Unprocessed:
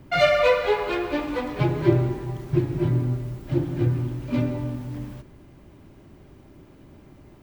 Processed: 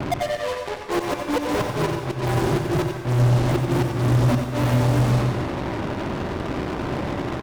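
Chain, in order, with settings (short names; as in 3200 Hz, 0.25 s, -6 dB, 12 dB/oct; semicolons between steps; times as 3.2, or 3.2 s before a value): steep low-pass 1100 Hz 96 dB/oct; tilt +2.5 dB/oct; flipped gate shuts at -21 dBFS, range -33 dB; in parallel at -7.5 dB: fuzz box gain 60 dB, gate -55 dBFS; on the sum: echo 90 ms -7.5 dB; on a send at -6 dB: reverb RT60 1.3 s, pre-delay 83 ms; on the sum: gain -1 dB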